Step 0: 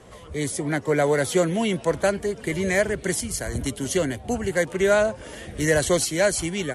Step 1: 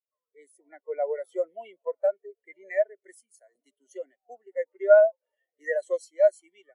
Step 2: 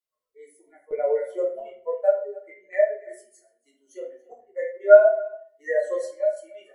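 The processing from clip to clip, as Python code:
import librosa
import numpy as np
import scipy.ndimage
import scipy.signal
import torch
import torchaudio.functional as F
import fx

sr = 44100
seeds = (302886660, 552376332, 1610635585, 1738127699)

y1 = scipy.signal.sosfilt(scipy.signal.butter(2, 620.0, 'highpass', fs=sr, output='sos'), x)
y1 = fx.notch(y1, sr, hz=1600.0, q=11.0)
y1 = fx.spectral_expand(y1, sr, expansion=2.5)
y1 = y1 * 10.0 ** (4.0 / 20.0)
y2 = fx.chopper(y1, sr, hz=1.1, depth_pct=65, duty_pct=75)
y2 = y2 + 10.0 ** (-22.0 / 20.0) * np.pad(y2, (int(282 * sr / 1000.0), 0))[:len(y2)]
y2 = fx.room_shoebox(y2, sr, seeds[0], volume_m3=47.0, walls='mixed', distance_m=1.0)
y2 = y2 * 10.0 ** (-2.0 / 20.0)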